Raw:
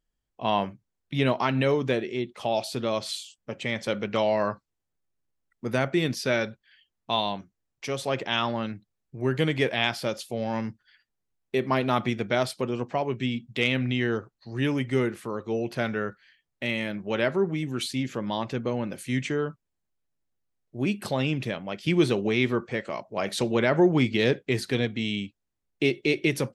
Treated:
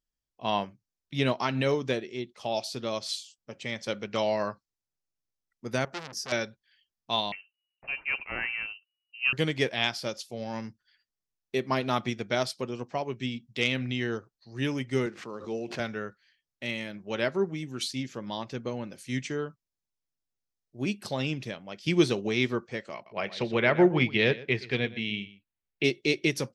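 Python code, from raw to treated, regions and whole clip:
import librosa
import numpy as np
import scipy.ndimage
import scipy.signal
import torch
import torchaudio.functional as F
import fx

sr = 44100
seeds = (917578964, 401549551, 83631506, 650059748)

y = fx.chain(x, sr, fx.band_shelf(hz=3000.0, db=-12.0, octaves=1.3),
    fx.transformer_sat(knee_hz=3200.0), at=(5.85, 6.32))
y = fx.chain(y, sr, fx.sample_sort(block=8),
    fx.freq_invert(carrier_hz=2900), at=(7.32, 9.33))
y = fx.chain(y, sr, fx.median_filter(points=9),
    fx.bandpass_edges(low_hz=140.0, high_hz=7000.0),
    fx.pre_swell(db_per_s=70.0), at=(15.06, 15.8))
y = fx.chain(y, sr, fx.lowpass_res(hz=2600.0, q=1.7),
    fx.notch(hz=280.0, q=6.2),
    fx.echo_single(ms=121, db=-13.0), at=(22.94, 25.84))
y = fx.peak_eq(y, sr, hz=5400.0, db=9.5, octaves=0.91)
y = fx.upward_expand(y, sr, threshold_db=-35.0, expansion=1.5)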